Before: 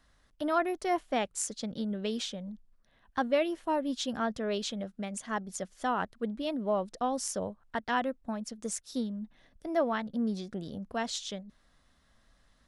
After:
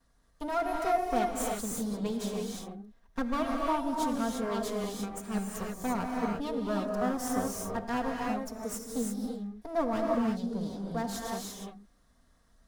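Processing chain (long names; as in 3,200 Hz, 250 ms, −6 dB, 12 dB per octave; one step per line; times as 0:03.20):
lower of the sound and its delayed copy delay 4.3 ms
parametric band 2,700 Hz −9.5 dB 1.7 octaves
reverb whose tail is shaped and stops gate 370 ms rising, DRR −1 dB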